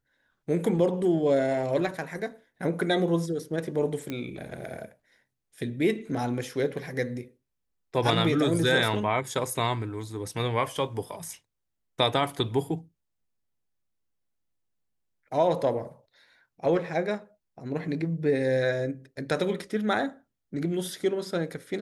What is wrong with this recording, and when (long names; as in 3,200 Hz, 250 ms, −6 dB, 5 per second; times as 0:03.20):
0:04.10: click −19 dBFS